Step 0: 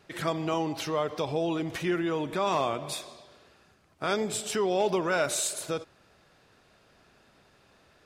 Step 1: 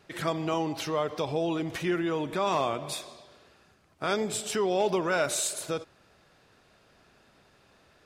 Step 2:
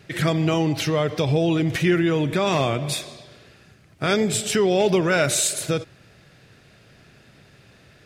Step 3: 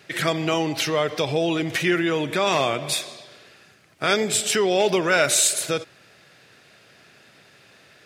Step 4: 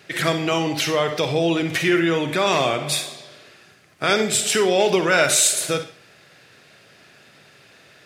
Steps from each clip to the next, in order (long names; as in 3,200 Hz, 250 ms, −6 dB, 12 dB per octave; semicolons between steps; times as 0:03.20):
no processing that can be heard
octave-band graphic EQ 125/1,000/2,000 Hz +10/−8/+4 dB; level +8 dB
high-pass filter 540 Hz 6 dB per octave; level +3 dB
convolution reverb RT60 0.40 s, pre-delay 42 ms, DRR 8.5 dB; level +1.5 dB